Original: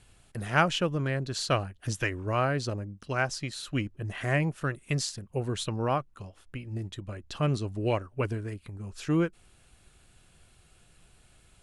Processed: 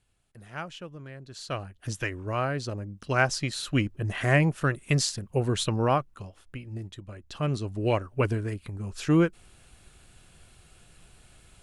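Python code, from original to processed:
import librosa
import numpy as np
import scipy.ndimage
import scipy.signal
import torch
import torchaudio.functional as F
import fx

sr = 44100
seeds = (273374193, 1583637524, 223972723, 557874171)

y = fx.gain(x, sr, db=fx.line((1.18, -13.5), (1.79, -1.5), (2.69, -1.5), (3.16, 5.0), (5.75, 5.0), (7.09, -4.0), (8.18, 4.5)))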